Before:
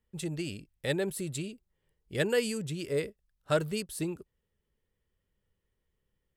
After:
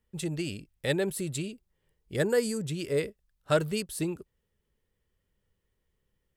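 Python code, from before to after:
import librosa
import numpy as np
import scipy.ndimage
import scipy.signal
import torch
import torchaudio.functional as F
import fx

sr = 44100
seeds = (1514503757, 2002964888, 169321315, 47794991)

y = fx.peak_eq(x, sr, hz=2800.0, db=-13.0, octaves=0.67, at=(2.16, 2.64))
y = y * librosa.db_to_amplitude(2.5)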